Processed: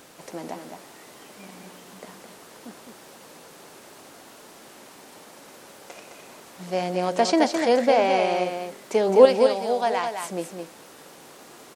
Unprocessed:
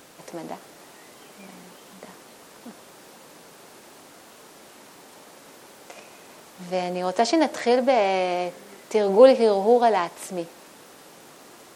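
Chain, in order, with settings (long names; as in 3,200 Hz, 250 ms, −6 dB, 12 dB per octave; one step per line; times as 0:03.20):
0:09.25–0:10.23: parametric band 300 Hz −10 dB 2.5 octaves
single-tap delay 212 ms −6 dB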